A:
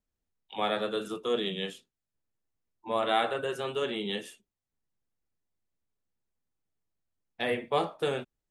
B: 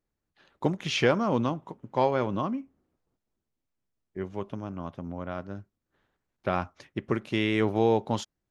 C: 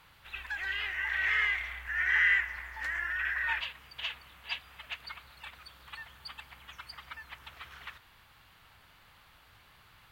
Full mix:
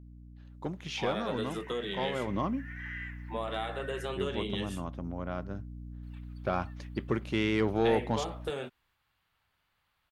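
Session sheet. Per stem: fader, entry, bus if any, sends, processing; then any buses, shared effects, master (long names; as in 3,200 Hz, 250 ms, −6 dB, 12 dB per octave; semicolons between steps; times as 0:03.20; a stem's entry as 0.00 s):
0.0 dB, 0.45 s, no send, downward compressor 6 to 1, threshold −32 dBFS, peak gain reduction 10.5 dB
0:02.13 −8.5 dB → 0:02.35 −1.5 dB, 0.00 s, no send, mains hum 60 Hz, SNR 11 dB; soft clipping −15 dBFS, distortion −17 dB
−17.0 dB, 0.70 s, muted 0:04.06–0:06.03, no send, no processing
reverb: not used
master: no processing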